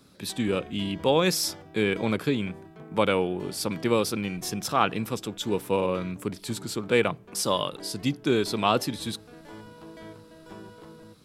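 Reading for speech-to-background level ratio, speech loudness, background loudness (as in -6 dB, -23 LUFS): 19.5 dB, -27.0 LUFS, -46.5 LUFS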